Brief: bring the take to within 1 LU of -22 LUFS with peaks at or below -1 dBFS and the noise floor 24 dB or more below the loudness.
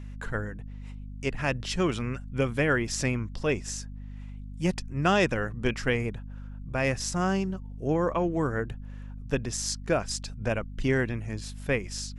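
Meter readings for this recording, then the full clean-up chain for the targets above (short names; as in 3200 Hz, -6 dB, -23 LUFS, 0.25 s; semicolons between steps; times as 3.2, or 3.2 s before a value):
hum 50 Hz; harmonics up to 250 Hz; hum level -37 dBFS; loudness -29.0 LUFS; peak -10.0 dBFS; loudness target -22.0 LUFS
-> notches 50/100/150/200/250 Hz; gain +7 dB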